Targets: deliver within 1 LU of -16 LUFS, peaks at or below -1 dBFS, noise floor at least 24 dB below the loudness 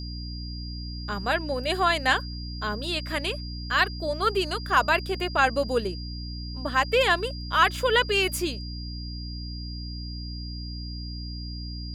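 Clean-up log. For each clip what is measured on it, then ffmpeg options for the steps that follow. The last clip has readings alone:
hum 60 Hz; harmonics up to 300 Hz; hum level -33 dBFS; steady tone 4800 Hz; tone level -40 dBFS; loudness -27.0 LUFS; peak -7.5 dBFS; loudness target -16.0 LUFS
-> -af "bandreject=f=60:t=h:w=6,bandreject=f=120:t=h:w=6,bandreject=f=180:t=h:w=6,bandreject=f=240:t=h:w=6,bandreject=f=300:t=h:w=6"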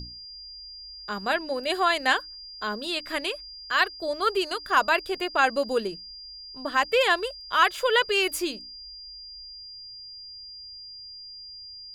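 hum none; steady tone 4800 Hz; tone level -40 dBFS
-> -af "bandreject=f=4.8k:w=30"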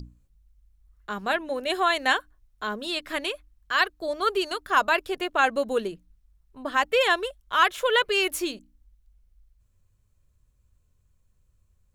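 steady tone none; loudness -25.0 LUFS; peak -7.5 dBFS; loudness target -16.0 LUFS
-> -af "volume=9dB,alimiter=limit=-1dB:level=0:latency=1"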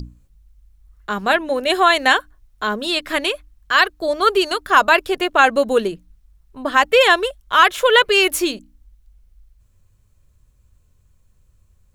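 loudness -16.5 LUFS; peak -1.0 dBFS; noise floor -58 dBFS

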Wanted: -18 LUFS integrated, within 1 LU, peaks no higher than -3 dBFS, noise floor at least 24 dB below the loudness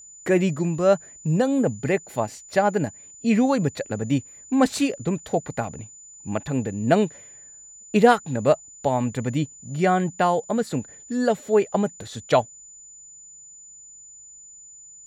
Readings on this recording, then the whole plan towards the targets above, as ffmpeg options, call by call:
steady tone 7000 Hz; tone level -43 dBFS; loudness -23.5 LUFS; peak -4.5 dBFS; loudness target -18.0 LUFS
-> -af "bandreject=f=7k:w=30"
-af "volume=5.5dB,alimiter=limit=-3dB:level=0:latency=1"

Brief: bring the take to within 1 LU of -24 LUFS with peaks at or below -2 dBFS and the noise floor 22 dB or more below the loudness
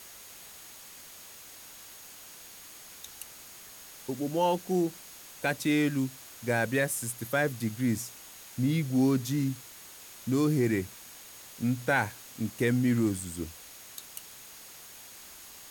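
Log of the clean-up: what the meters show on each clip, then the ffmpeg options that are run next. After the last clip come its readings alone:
steady tone 6600 Hz; tone level -56 dBFS; noise floor -49 dBFS; noise floor target -52 dBFS; loudness -29.5 LUFS; peak -13.5 dBFS; loudness target -24.0 LUFS
-> -af "bandreject=f=6.6k:w=30"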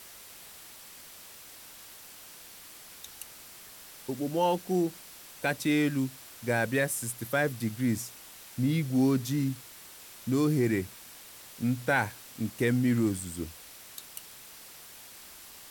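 steady tone none; noise floor -49 dBFS; noise floor target -52 dBFS
-> -af "afftdn=nr=6:nf=-49"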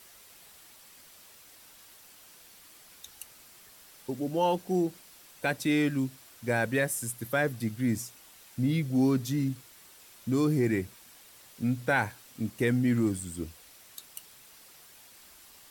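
noise floor -55 dBFS; loudness -29.5 LUFS; peak -13.5 dBFS; loudness target -24.0 LUFS
-> -af "volume=5.5dB"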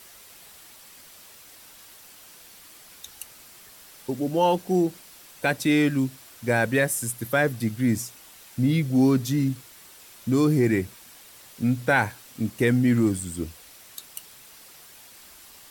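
loudness -24.0 LUFS; peak -8.0 dBFS; noise floor -49 dBFS

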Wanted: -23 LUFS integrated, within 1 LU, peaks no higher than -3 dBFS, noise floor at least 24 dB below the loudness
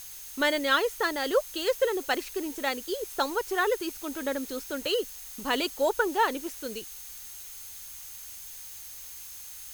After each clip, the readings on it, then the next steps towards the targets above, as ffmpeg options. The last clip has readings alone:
steady tone 6400 Hz; tone level -50 dBFS; noise floor -44 dBFS; noise floor target -54 dBFS; loudness -30.0 LUFS; peak -11.0 dBFS; loudness target -23.0 LUFS
-> -af "bandreject=f=6.4k:w=30"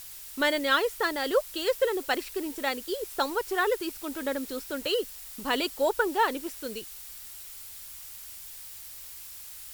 steady tone none; noise floor -44 dBFS; noise floor target -53 dBFS
-> -af "afftdn=nr=9:nf=-44"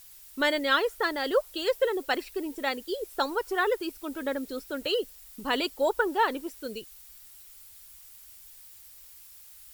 noise floor -51 dBFS; noise floor target -53 dBFS
-> -af "afftdn=nr=6:nf=-51"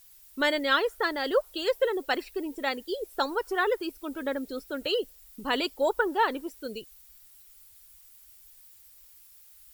noise floor -55 dBFS; loudness -29.0 LUFS; peak -11.5 dBFS; loudness target -23.0 LUFS
-> -af "volume=6dB"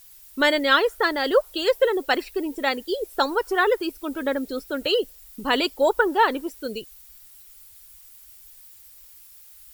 loudness -23.0 LUFS; peak -5.5 dBFS; noise floor -49 dBFS

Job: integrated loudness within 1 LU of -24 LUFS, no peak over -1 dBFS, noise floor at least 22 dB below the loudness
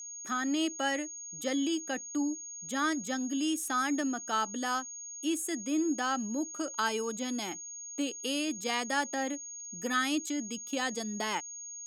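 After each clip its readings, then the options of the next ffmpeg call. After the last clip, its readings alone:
steady tone 6600 Hz; tone level -41 dBFS; loudness -32.5 LUFS; peak -16.5 dBFS; loudness target -24.0 LUFS
-> -af "bandreject=f=6.6k:w=30"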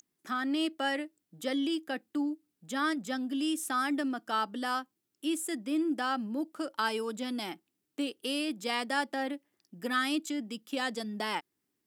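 steady tone none; loudness -33.0 LUFS; peak -17.0 dBFS; loudness target -24.0 LUFS
-> -af "volume=9dB"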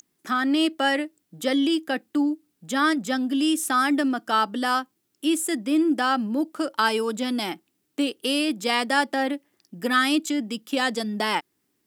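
loudness -24.0 LUFS; peak -8.0 dBFS; noise floor -74 dBFS

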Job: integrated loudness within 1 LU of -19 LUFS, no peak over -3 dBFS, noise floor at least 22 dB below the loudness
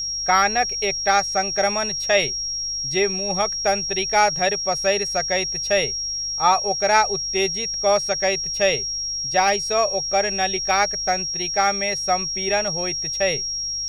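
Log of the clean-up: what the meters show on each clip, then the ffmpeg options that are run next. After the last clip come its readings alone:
hum 50 Hz; harmonics up to 150 Hz; hum level -45 dBFS; steady tone 5600 Hz; tone level -24 dBFS; loudness -20.5 LUFS; peak -3.0 dBFS; loudness target -19.0 LUFS
-> -af "bandreject=f=50:t=h:w=4,bandreject=f=100:t=h:w=4,bandreject=f=150:t=h:w=4"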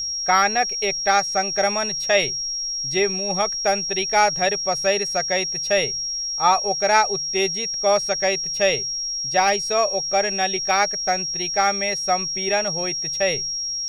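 hum none; steady tone 5600 Hz; tone level -24 dBFS
-> -af "bandreject=f=5.6k:w=30"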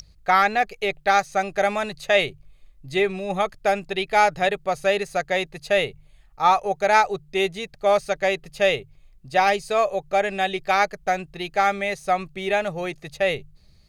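steady tone none; loudness -22.5 LUFS; peak -4.0 dBFS; loudness target -19.0 LUFS
-> -af "volume=3.5dB,alimiter=limit=-3dB:level=0:latency=1"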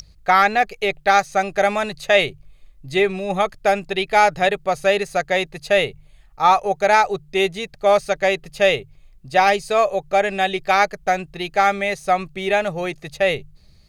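loudness -19.5 LUFS; peak -3.0 dBFS; noise floor -51 dBFS

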